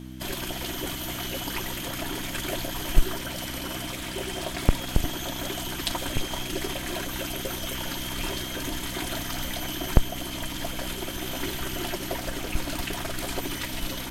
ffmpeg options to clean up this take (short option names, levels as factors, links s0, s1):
-af "bandreject=f=63.4:t=h:w=4,bandreject=f=126.8:t=h:w=4,bandreject=f=190.2:t=h:w=4,bandreject=f=253.6:t=h:w=4,bandreject=f=317:t=h:w=4"